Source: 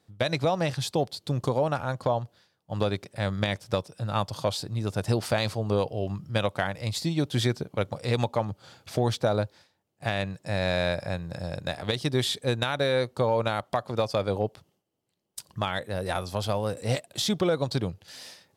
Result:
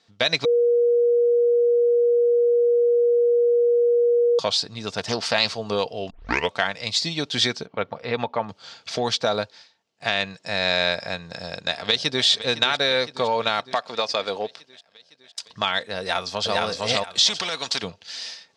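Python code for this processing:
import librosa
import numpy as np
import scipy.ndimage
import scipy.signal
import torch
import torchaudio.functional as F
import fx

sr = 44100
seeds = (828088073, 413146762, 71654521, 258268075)

y = fx.doppler_dist(x, sr, depth_ms=0.26, at=(4.98, 5.47))
y = fx.lowpass(y, sr, hz=2000.0, slope=12, at=(7.66, 8.49))
y = fx.echo_throw(y, sr, start_s=11.29, length_s=0.96, ms=510, feedback_pct=70, wet_db=-13.5)
y = fx.highpass(y, sr, hz=340.0, slope=6, at=(13.74, 15.47))
y = fx.echo_throw(y, sr, start_s=15.99, length_s=0.58, ms=460, feedback_pct=20, wet_db=-0.5)
y = fx.spectral_comp(y, sr, ratio=2.0, at=(17.27, 17.82), fade=0.02)
y = fx.edit(y, sr, fx.bleep(start_s=0.45, length_s=3.94, hz=477.0, db=-18.0),
    fx.tape_start(start_s=6.1, length_s=0.41), tone=tone)
y = scipy.signal.sosfilt(scipy.signal.butter(4, 5700.0, 'lowpass', fs=sr, output='sos'), y)
y = fx.tilt_eq(y, sr, slope=3.5)
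y = y + 0.33 * np.pad(y, (int(4.4 * sr / 1000.0), 0))[:len(y)]
y = F.gain(torch.from_numpy(y), 4.5).numpy()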